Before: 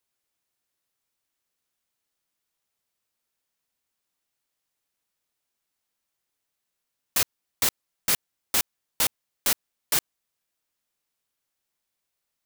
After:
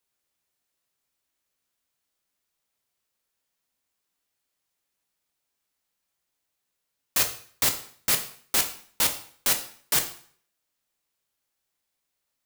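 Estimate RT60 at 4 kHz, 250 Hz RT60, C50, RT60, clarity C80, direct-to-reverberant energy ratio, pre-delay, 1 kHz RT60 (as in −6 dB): 0.50 s, 0.55 s, 10.5 dB, 0.50 s, 14.5 dB, 5.0 dB, 5 ms, 0.50 s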